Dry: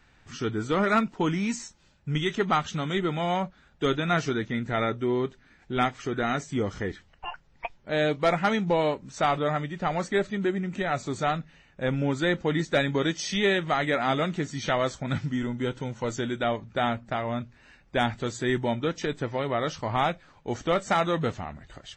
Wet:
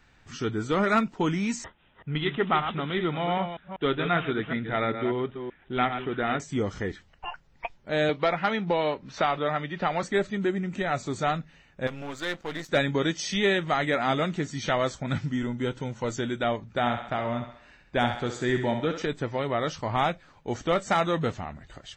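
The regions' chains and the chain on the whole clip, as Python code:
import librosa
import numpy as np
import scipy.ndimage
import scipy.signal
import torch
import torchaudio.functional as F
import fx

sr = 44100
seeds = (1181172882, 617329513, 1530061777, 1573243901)

y = fx.chain(x, sr, fx.reverse_delay(ms=193, wet_db=-8.0),
    fx.low_shelf(hz=180.0, db=-4.5),
    fx.resample_bad(factor=6, down='none', up='filtered'), at=(1.64, 6.4))
y = fx.chain(y, sr, fx.lowpass(hz=4600.0, slope=24),
    fx.low_shelf(hz=340.0, db=-6.5),
    fx.band_squash(depth_pct=70), at=(8.09, 10.03))
y = fx.chain(y, sr, fx.halfwave_gain(db=-12.0),
    fx.low_shelf(hz=420.0, db=-9.5), at=(11.87, 12.69))
y = fx.chain(y, sr, fx.high_shelf(hz=5800.0, db=-6.5),
    fx.echo_thinned(ms=66, feedback_pct=54, hz=360.0, wet_db=-7), at=(16.79, 19.02))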